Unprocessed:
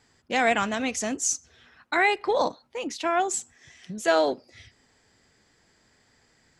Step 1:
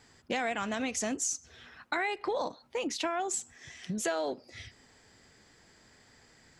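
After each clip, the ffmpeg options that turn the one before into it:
ffmpeg -i in.wav -filter_complex "[0:a]asplit=2[link_01][link_02];[link_02]alimiter=limit=-18.5dB:level=0:latency=1,volume=1dB[link_03];[link_01][link_03]amix=inputs=2:normalize=0,acompressor=threshold=-27dB:ratio=4,volume=-3.5dB" out.wav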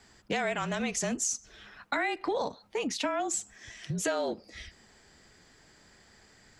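ffmpeg -i in.wav -af "afreqshift=-35,volume=1.5dB" out.wav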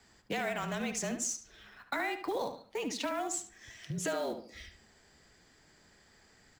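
ffmpeg -i in.wav -filter_complex "[0:a]acrossover=split=310[link_01][link_02];[link_02]acrusher=bits=5:mode=log:mix=0:aa=0.000001[link_03];[link_01][link_03]amix=inputs=2:normalize=0,asplit=2[link_04][link_05];[link_05]adelay=72,lowpass=frequency=3500:poles=1,volume=-8dB,asplit=2[link_06][link_07];[link_07]adelay=72,lowpass=frequency=3500:poles=1,volume=0.33,asplit=2[link_08][link_09];[link_09]adelay=72,lowpass=frequency=3500:poles=1,volume=0.33,asplit=2[link_10][link_11];[link_11]adelay=72,lowpass=frequency=3500:poles=1,volume=0.33[link_12];[link_04][link_06][link_08][link_10][link_12]amix=inputs=5:normalize=0,volume=-4.5dB" out.wav

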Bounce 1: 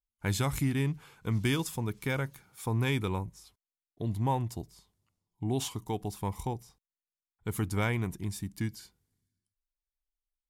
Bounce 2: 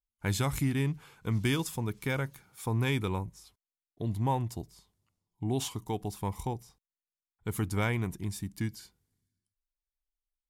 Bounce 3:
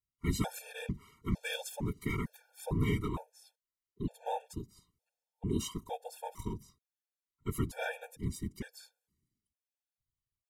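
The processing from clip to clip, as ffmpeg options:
ffmpeg -i in.wav -af anull out.wav
ffmpeg -i in.wav -af "afftfilt=real='hypot(re,im)*cos(2*PI*random(0))':imag='hypot(re,im)*sin(2*PI*random(1))':win_size=512:overlap=0.75,afftfilt=real='re*gt(sin(2*PI*1.1*pts/sr)*(1-2*mod(floor(b*sr/1024/460),2)),0)':imag='im*gt(sin(2*PI*1.1*pts/sr)*(1-2*mod(floor(b*sr/1024/460),2)),0)':win_size=1024:overlap=0.75,volume=4.5dB" out.wav

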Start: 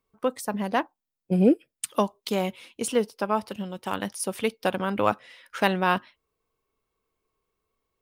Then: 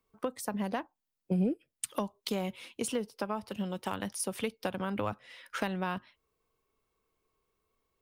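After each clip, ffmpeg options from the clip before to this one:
ffmpeg -i in.wav -filter_complex "[0:a]acrossover=split=140[link_01][link_02];[link_02]acompressor=threshold=-31dB:ratio=6[link_03];[link_01][link_03]amix=inputs=2:normalize=0" out.wav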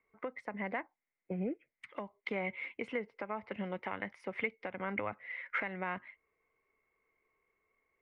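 ffmpeg -i in.wav -af "equalizer=frequency=580:width_type=o:width=2.6:gain=8,alimiter=limit=-19dB:level=0:latency=1:release=309,lowpass=frequency=2100:width_type=q:width=14,volume=-8.5dB" out.wav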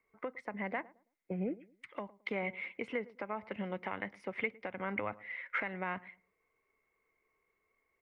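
ffmpeg -i in.wav -filter_complex "[0:a]asplit=2[link_01][link_02];[link_02]adelay=109,lowpass=frequency=900:poles=1,volume=-19dB,asplit=2[link_03][link_04];[link_04]adelay=109,lowpass=frequency=900:poles=1,volume=0.3,asplit=2[link_05][link_06];[link_06]adelay=109,lowpass=frequency=900:poles=1,volume=0.3[link_07];[link_01][link_03][link_05][link_07]amix=inputs=4:normalize=0" out.wav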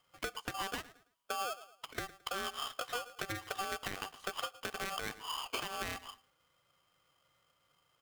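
ffmpeg -i in.wav -af "alimiter=level_in=1.5dB:limit=-24dB:level=0:latency=1:release=243,volume=-1.5dB,acompressor=threshold=-40dB:ratio=5,aeval=exprs='val(0)*sgn(sin(2*PI*970*n/s))':channel_layout=same,volume=5dB" out.wav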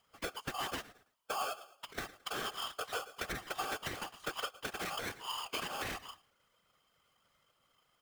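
ffmpeg -i in.wav -af "afftfilt=real='hypot(re,im)*cos(2*PI*random(0))':imag='hypot(re,im)*sin(2*PI*random(1))':win_size=512:overlap=0.75,volume=6dB" out.wav

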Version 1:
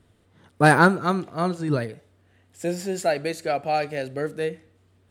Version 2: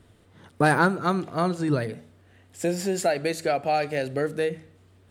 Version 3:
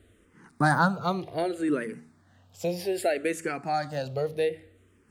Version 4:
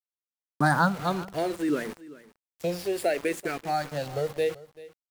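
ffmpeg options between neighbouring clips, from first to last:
ffmpeg -i in.wav -af "bandreject=frequency=78.84:width_type=h:width=4,bandreject=frequency=157.68:width_type=h:width=4,bandreject=frequency=236.52:width_type=h:width=4,acompressor=threshold=-28dB:ratio=2,volume=4.5dB" out.wav
ffmpeg -i in.wav -filter_complex "[0:a]asplit=2[link_01][link_02];[link_02]afreqshift=-0.64[link_03];[link_01][link_03]amix=inputs=2:normalize=1" out.wav
ffmpeg -i in.wav -af "aeval=exprs='val(0)*gte(abs(val(0)),0.015)':channel_layout=same,aecho=1:1:387:0.112" out.wav

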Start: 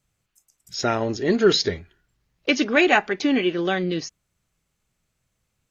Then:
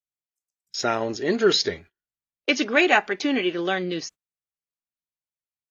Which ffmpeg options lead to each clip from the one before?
ffmpeg -i in.wav -af "agate=range=-27dB:threshold=-40dB:ratio=16:detection=peak,lowshelf=frequency=180:gain=-11.5" out.wav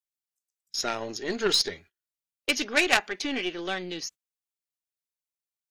ffmpeg -i in.wav -af "aeval=exprs='0.708*(cos(1*acos(clip(val(0)/0.708,-1,1)))-cos(1*PI/2))+0.282*(cos(2*acos(clip(val(0)/0.708,-1,1)))-cos(2*PI/2))+0.0891*(cos(3*acos(clip(val(0)/0.708,-1,1)))-cos(3*PI/2))+0.0251*(cos(5*acos(clip(val(0)/0.708,-1,1)))-cos(5*PI/2))+0.0501*(cos(8*acos(clip(val(0)/0.708,-1,1)))-cos(8*PI/2))':channel_layout=same,highshelf=frequency=2500:gain=10,volume=-6.5dB" out.wav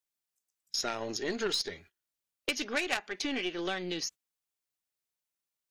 ffmpeg -i in.wav -af "acompressor=threshold=-35dB:ratio=3,volume=3dB" out.wav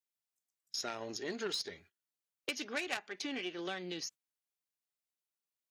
ffmpeg -i in.wav -af "highpass=frequency=84:width=0.5412,highpass=frequency=84:width=1.3066,volume=-6dB" out.wav

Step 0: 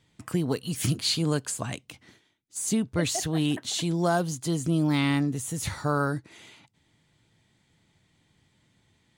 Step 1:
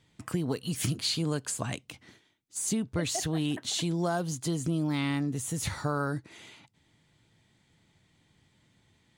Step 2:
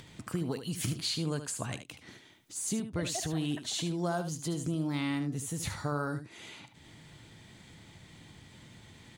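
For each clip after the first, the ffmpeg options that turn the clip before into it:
ffmpeg -i in.wav -af "highshelf=frequency=11000:gain=-3,acompressor=threshold=-27dB:ratio=3" out.wav
ffmpeg -i in.wav -af "acompressor=mode=upward:threshold=-35dB:ratio=2.5,aecho=1:1:75:0.316,volume=-3.5dB" out.wav

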